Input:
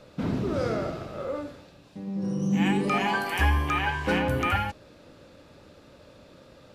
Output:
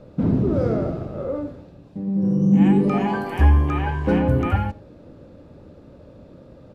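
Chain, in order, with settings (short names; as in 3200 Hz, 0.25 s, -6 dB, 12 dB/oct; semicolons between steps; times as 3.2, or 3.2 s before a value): tilt shelf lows +10 dB; on a send: echo 91 ms -23.5 dB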